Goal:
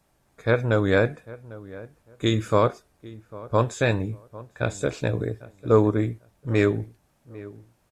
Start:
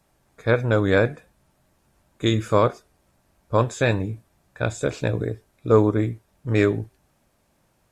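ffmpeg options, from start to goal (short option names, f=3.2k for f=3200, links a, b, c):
-filter_complex "[0:a]asplit=2[a][b];[b]adelay=799,lowpass=f=1.4k:p=1,volume=-18.5dB,asplit=2[c][d];[d]adelay=799,lowpass=f=1.4k:p=1,volume=0.24[e];[a][c][e]amix=inputs=3:normalize=0,volume=-1.5dB"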